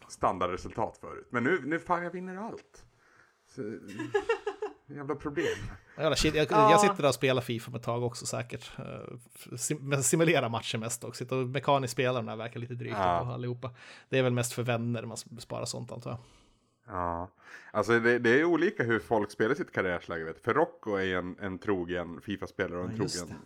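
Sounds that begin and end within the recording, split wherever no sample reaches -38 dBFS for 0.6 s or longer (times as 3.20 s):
3.58–16.16 s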